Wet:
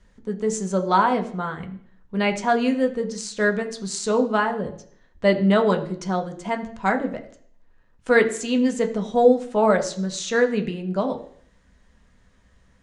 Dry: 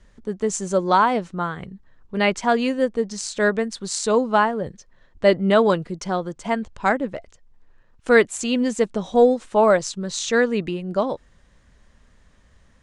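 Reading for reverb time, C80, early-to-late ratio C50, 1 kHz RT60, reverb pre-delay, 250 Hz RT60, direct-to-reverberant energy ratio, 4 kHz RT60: 0.60 s, 15.0 dB, 12.5 dB, 0.55 s, 3 ms, 0.60 s, 4.0 dB, 0.60 s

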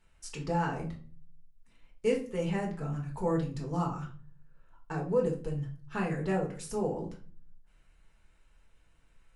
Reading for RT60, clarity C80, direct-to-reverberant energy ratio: 0.40 s, 14.5 dB, −1.5 dB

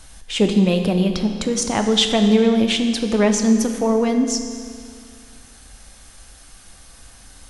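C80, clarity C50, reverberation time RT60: 7.5 dB, 6.5 dB, 2.2 s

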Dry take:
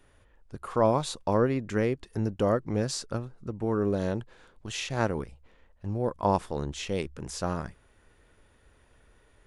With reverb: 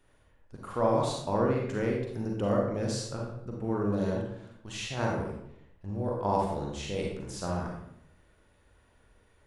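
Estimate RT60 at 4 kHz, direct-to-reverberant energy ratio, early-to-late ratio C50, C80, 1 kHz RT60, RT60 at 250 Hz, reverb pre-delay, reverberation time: 0.50 s, −1.5 dB, 1.0 dB, 5.5 dB, 0.70 s, 0.90 s, 36 ms, 0.70 s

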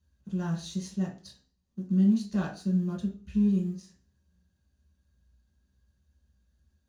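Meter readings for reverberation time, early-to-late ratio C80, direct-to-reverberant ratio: 0.40 s, 14.5 dB, −3.5 dB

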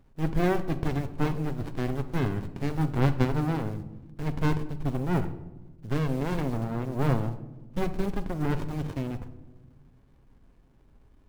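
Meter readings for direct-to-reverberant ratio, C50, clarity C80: 9.0 dB, 13.5 dB, 16.0 dB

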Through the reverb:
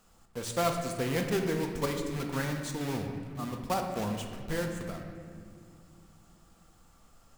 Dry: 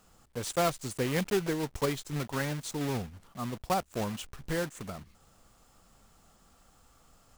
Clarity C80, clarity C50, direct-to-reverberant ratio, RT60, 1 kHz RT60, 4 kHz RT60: 6.0 dB, 5.0 dB, 3.0 dB, 2.2 s, 1.7 s, 1.4 s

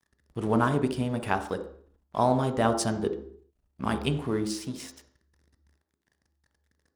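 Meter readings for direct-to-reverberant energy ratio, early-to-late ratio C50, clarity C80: 7.0 dB, 10.0 dB, 14.0 dB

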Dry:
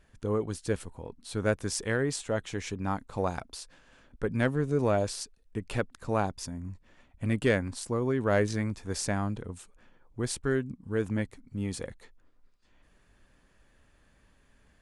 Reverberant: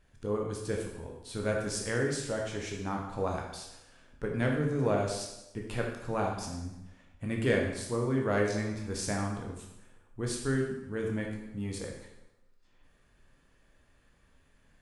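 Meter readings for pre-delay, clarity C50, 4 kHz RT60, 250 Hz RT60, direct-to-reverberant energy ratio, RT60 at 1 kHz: 6 ms, 3.5 dB, 0.85 s, 0.95 s, 0.0 dB, 0.90 s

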